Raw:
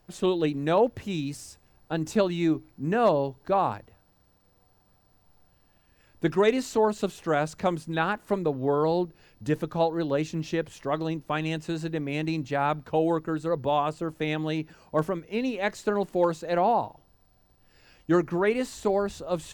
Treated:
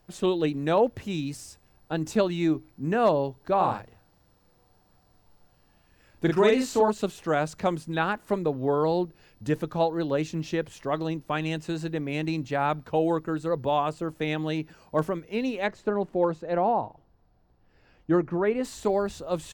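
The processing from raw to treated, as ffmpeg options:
ffmpeg -i in.wav -filter_complex "[0:a]asplit=3[link_01][link_02][link_03];[link_01]afade=type=out:start_time=3.59:duration=0.02[link_04];[link_02]asplit=2[link_05][link_06];[link_06]adelay=43,volume=-3dB[link_07];[link_05][link_07]amix=inputs=2:normalize=0,afade=type=in:start_time=3.59:duration=0.02,afade=type=out:start_time=6.9:duration=0.02[link_08];[link_03]afade=type=in:start_time=6.9:duration=0.02[link_09];[link_04][link_08][link_09]amix=inputs=3:normalize=0,asplit=3[link_10][link_11][link_12];[link_10]afade=type=out:start_time=15.66:duration=0.02[link_13];[link_11]lowpass=frequency=1300:poles=1,afade=type=in:start_time=15.66:duration=0.02,afade=type=out:start_time=18.63:duration=0.02[link_14];[link_12]afade=type=in:start_time=18.63:duration=0.02[link_15];[link_13][link_14][link_15]amix=inputs=3:normalize=0" out.wav

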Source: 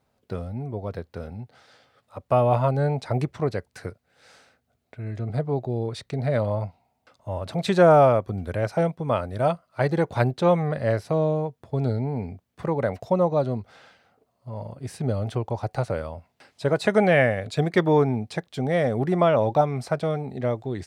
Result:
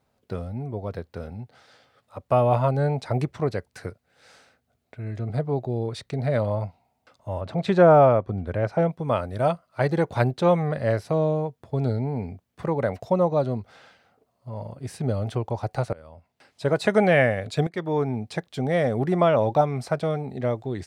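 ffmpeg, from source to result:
ffmpeg -i in.wav -filter_complex "[0:a]asettb=1/sr,asplit=3[link_01][link_02][link_03];[link_01]atrim=end=7.414[link_04];[link_02]atrim=start=7.41:end=8.91,asetpts=PTS-STARTPTS,afade=type=in:duration=0.004:curve=qsin,afade=type=out:start_time=1.496:duration=0.004:curve=qsin,aemphasis=mode=reproduction:type=75fm[link_05];[link_03]atrim=start=8.906[link_06];[link_04][link_05]acrossfade=duration=0.004:curve1=hsin:curve2=qsin[link_07];[link_07][link_06]acrossfade=duration=0.004:curve1=qsin:curve2=hsin,asplit=3[link_08][link_09][link_10];[link_08]atrim=end=15.93,asetpts=PTS-STARTPTS,afade=type=out:start_time=15.926:duration=0.004:curve=hsin:silence=0.0749894[link_11];[link_09]atrim=start=15.93:end=17.67,asetpts=PTS-STARTPTS,afade=type=in:duration=0.77:silence=0.0749894,afade=type=out:start_time=1.736:duration=0.004:curve=hsin:silence=0.188365[link_12];[link_10]atrim=start=17.67,asetpts=PTS-STARTPTS,afade=type=in:duration=0.69:silence=0.188365[link_13];[link_11][link_12][link_13]concat=n=3:v=0:a=1" out.wav

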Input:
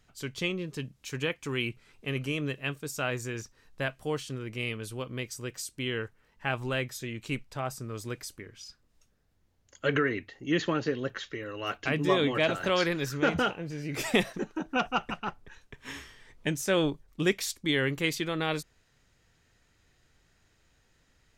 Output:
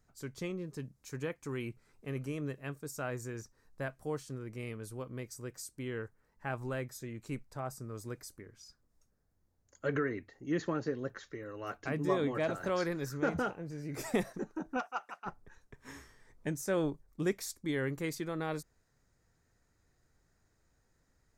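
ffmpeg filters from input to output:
ffmpeg -i in.wav -filter_complex "[0:a]asplit=3[link_01][link_02][link_03];[link_01]afade=type=out:start_time=14.79:duration=0.02[link_04];[link_02]highpass=770,afade=type=in:start_time=14.79:duration=0.02,afade=type=out:start_time=15.25:duration=0.02[link_05];[link_03]afade=type=in:start_time=15.25:duration=0.02[link_06];[link_04][link_05][link_06]amix=inputs=3:normalize=0,equalizer=frequency=3000:width=1.5:gain=-14.5,volume=-5dB" out.wav

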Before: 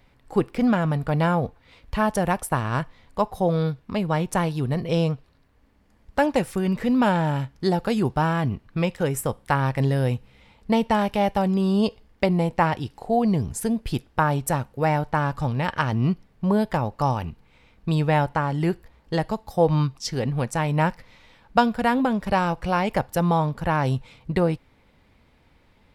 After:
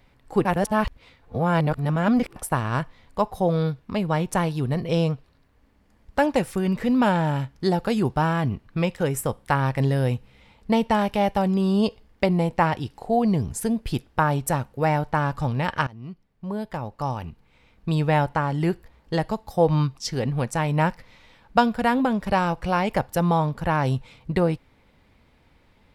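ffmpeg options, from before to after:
ffmpeg -i in.wav -filter_complex "[0:a]asplit=4[link_01][link_02][link_03][link_04];[link_01]atrim=end=0.452[link_05];[link_02]atrim=start=0.448:end=2.362,asetpts=PTS-STARTPTS,areverse[link_06];[link_03]atrim=start=2.358:end=15.87,asetpts=PTS-STARTPTS,afade=type=out:start_time=13.508:duration=0.004:curve=hsin:silence=0.0841395[link_07];[link_04]atrim=start=15.87,asetpts=PTS-STARTPTS,afade=type=in:duration=2.27:silence=0.0841395[link_08];[link_05][link_06]acrossfade=duration=0.004:curve1=hsin:curve2=hsin[link_09];[link_07][link_08]concat=n=2:v=0:a=1[link_10];[link_09][link_10]acrossfade=duration=0.004:curve1=hsin:curve2=hsin" out.wav

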